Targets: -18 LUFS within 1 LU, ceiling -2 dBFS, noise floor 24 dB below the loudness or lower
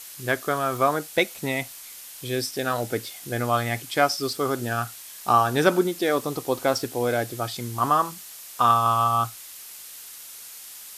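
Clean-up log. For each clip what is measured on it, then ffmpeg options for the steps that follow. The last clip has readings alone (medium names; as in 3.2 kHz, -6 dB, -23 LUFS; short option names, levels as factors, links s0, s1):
noise floor -42 dBFS; noise floor target -49 dBFS; loudness -24.5 LUFS; peak level -6.0 dBFS; loudness target -18.0 LUFS
-> -af "afftdn=nr=7:nf=-42"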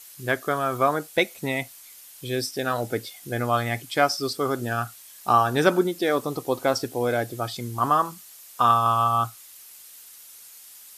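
noise floor -47 dBFS; noise floor target -49 dBFS
-> -af "afftdn=nr=6:nf=-47"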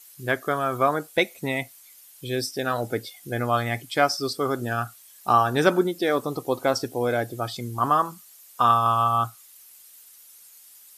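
noise floor -51 dBFS; loudness -24.5 LUFS; peak level -6.0 dBFS; loudness target -18.0 LUFS
-> -af "volume=2.11,alimiter=limit=0.794:level=0:latency=1"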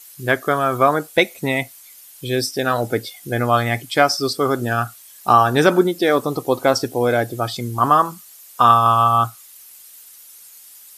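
loudness -18.0 LUFS; peak level -2.0 dBFS; noise floor -44 dBFS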